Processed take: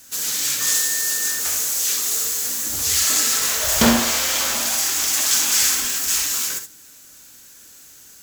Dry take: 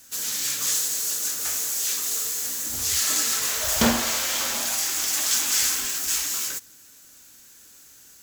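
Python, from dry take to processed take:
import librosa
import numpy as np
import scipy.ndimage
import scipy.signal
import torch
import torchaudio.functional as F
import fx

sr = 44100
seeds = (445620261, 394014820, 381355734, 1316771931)

y = fx.dmg_tone(x, sr, hz=1800.0, level_db=-36.0, at=(0.59, 1.39), fade=0.02)
y = fx.room_early_taps(y, sr, ms=(65, 77), db=(-9.5, -12.0))
y = F.gain(torch.from_numpy(y), 4.0).numpy()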